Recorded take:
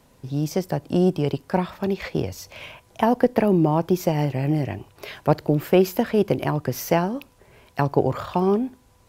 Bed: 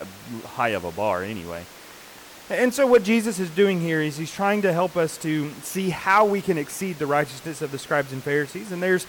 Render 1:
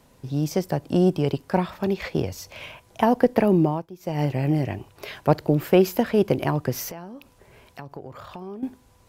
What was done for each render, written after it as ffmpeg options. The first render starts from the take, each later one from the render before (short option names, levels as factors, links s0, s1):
-filter_complex "[0:a]asettb=1/sr,asplit=3[s0][s1][s2];[s0]atrim=end=6.904[s3];[s1]atrim=start=6.9:end=8.63,asetpts=PTS-STARTPTS,afade=t=in:d=0.004:c=qsin,afade=t=out:st=1.726:d=0.004:c=qsin,acompressor=threshold=0.01:ratio=3:attack=3.2:release=140:knee=1:detection=peak[s4];[s2]atrim=start=8.626[s5];[s3][s4]acrossfade=d=0.004:c1=hsin:c2=qsin[s6];[s6][s5]acrossfade=d=0.004:c1=qsin:c2=hsin,asplit=3[s7][s8][s9];[s7]atrim=end=3.86,asetpts=PTS-STARTPTS,afade=t=out:st=3.61:d=0.25:silence=0.0944061[s10];[s8]atrim=start=3.86:end=4,asetpts=PTS-STARTPTS,volume=0.0944[s11];[s9]atrim=start=4,asetpts=PTS-STARTPTS,afade=t=in:d=0.25:silence=0.0944061[s12];[s10][s11][s12]concat=n=3:v=0:a=1"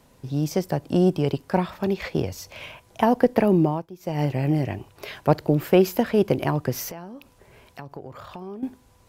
-af anull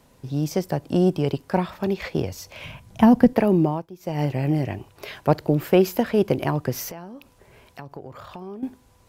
-filter_complex "[0:a]asettb=1/sr,asplit=3[s0][s1][s2];[s0]atrim=end=2.644[s3];[s1]atrim=start=2.64:end=3.33,asetpts=PTS-STARTPTS,afade=t=in:d=0.004:c=qsin,afade=t=out:st=0.686:d=0.004:c=qsin,lowshelf=f=270:t=q:w=1.5:g=10[s4];[s2]atrim=start=3.326[s5];[s3][s4]acrossfade=d=0.004:c1=hsin:c2=qsin[s6];[s6][s5]acrossfade=d=0.004:c1=qsin:c2=hsin"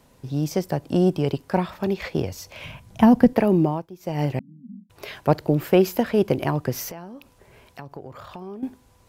-filter_complex "[0:a]asettb=1/sr,asplit=3[s0][s1][s2];[s0]atrim=end=4.394[s3];[s1]atrim=start=4.39:end=4.9,asetpts=PTS-STARTPTS,afade=t=in:d=0.004:c=qsin,afade=t=out:st=0.506:d=0.004:c=qsin,asuperpass=centerf=210:order=8:qfactor=3.2[s4];[s2]atrim=start=4.896[s5];[s3][s4]acrossfade=d=0.004:c1=hsin:c2=qsin[s6];[s6][s5]acrossfade=d=0.004:c1=qsin:c2=hsin"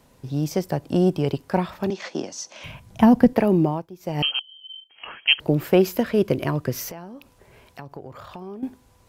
-filter_complex "[0:a]asettb=1/sr,asplit=3[s0][s1][s2];[s0]atrim=end=1.904[s3];[s1]atrim=start=1.9:end=2.64,asetpts=PTS-STARTPTS,afade=t=in:d=0.004:c=qsin,afade=t=out:st=0.736:d=0.004:c=qsin,highpass=f=220:w=0.5412,highpass=f=220:w=1.3066,equalizer=f=450:t=q:w=4:g=-8,equalizer=f=2300:t=q:w=4:g=-6,equalizer=f=6100:t=q:w=4:g=10,lowpass=f=8400:w=0.5412,lowpass=f=8400:w=1.3066[s4];[s2]atrim=start=2.636[s5];[s3][s4]acrossfade=d=0.004:c1=hsin:c2=qsin[s6];[s6][s5]acrossfade=d=0.004:c1=qsin:c2=hsin,asettb=1/sr,asplit=3[s7][s8][s9];[s7]atrim=end=4.224[s10];[s8]atrim=start=4.22:end=5.4,asetpts=PTS-STARTPTS,afade=t=in:d=0.004:c=qsin,afade=t=out:st=1.176:d=0.004:c=qsin,lowpass=f=2800:t=q:w=0.5098,lowpass=f=2800:t=q:w=0.6013,lowpass=f=2800:t=q:w=0.9,lowpass=f=2800:t=q:w=2.563,afreqshift=-3300[s11];[s9]atrim=start=5.396[s12];[s10][s11]acrossfade=d=0.004:c1=hsin:c2=qsin[s13];[s13][s12]acrossfade=d=0.004:c1=qsin:c2=hsin,asettb=1/sr,asplit=3[s14][s15][s16];[s14]atrim=end=5.924[s17];[s15]atrim=start=5.92:end=6.85,asetpts=PTS-STARTPTS,afade=t=in:d=0.004:c=qsin,afade=t=out:st=0.926:d=0.004:c=qsin,equalizer=f=810:t=o:w=0.21:g=-12[s18];[s16]atrim=start=6.846[s19];[s17][s18]acrossfade=d=0.004:c1=hsin:c2=qsin[s20];[s20][s19]acrossfade=d=0.004:c1=qsin:c2=hsin"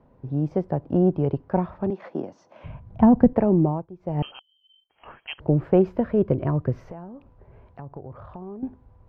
-af "lowpass=1000,asubboost=boost=2:cutoff=150"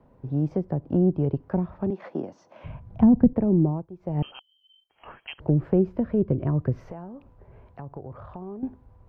-filter_complex "[0:a]acrossover=split=390[s0][s1];[s1]acompressor=threshold=0.02:ratio=6[s2];[s0][s2]amix=inputs=2:normalize=0"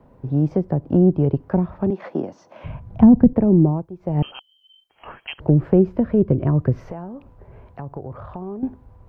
-af "volume=2,alimiter=limit=0.891:level=0:latency=1"